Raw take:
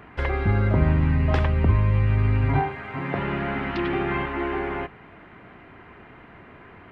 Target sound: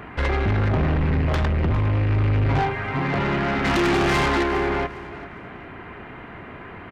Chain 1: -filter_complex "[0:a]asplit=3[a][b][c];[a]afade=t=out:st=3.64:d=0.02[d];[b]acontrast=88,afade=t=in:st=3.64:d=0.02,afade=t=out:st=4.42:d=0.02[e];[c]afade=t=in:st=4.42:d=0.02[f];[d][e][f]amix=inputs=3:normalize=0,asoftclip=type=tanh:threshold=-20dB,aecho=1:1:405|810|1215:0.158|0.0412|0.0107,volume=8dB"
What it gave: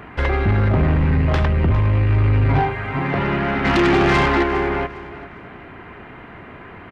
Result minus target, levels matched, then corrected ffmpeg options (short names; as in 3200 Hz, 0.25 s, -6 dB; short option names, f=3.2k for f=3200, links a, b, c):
soft clip: distortion -4 dB
-filter_complex "[0:a]asplit=3[a][b][c];[a]afade=t=out:st=3.64:d=0.02[d];[b]acontrast=88,afade=t=in:st=3.64:d=0.02,afade=t=out:st=4.42:d=0.02[e];[c]afade=t=in:st=4.42:d=0.02[f];[d][e][f]amix=inputs=3:normalize=0,asoftclip=type=tanh:threshold=-26dB,aecho=1:1:405|810|1215:0.158|0.0412|0.0107,volume=8dB"